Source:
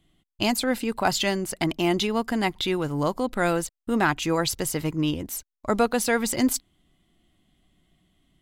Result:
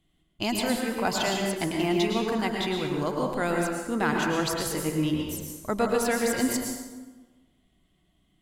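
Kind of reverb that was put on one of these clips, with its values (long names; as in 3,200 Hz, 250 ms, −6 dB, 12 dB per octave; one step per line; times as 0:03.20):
dense smooth reverb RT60 1.3 s, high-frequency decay 0.65×, pre-delay 95 ms, DRR 0 dB
level −5 dB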